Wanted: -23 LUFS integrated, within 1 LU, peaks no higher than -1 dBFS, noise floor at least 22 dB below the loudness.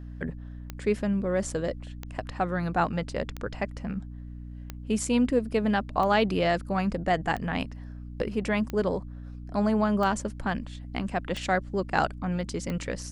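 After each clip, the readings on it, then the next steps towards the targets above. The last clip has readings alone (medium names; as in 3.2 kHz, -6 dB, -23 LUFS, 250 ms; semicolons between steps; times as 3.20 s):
clicks found 10; hum 60 Hz; highest harmonic 300 Hz; hum level -37 dBFS; loudness -28.5 LUFS; peak level -8.0 dBFS; loudness target -23.0 LUFS
-> de-click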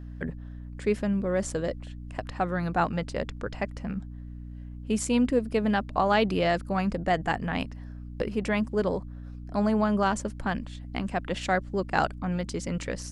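clicks found 0; hum 60 Hz; highest harmonic 300 Hz; hum level -37 dBFS
-> de-hum 60 Hz, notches 5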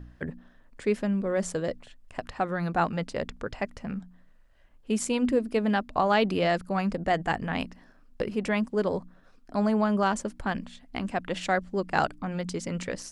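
hum not found; loudness -29.0 LUFS; peak level -8.5 dBFS; loudness target -23.0 LUFS
-> trim +6 dB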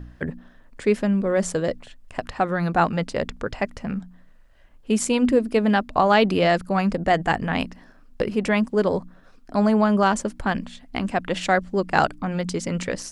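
loudness -23.0 LUFS; peak level -2.5 dBFS; noise floor -51 dBFS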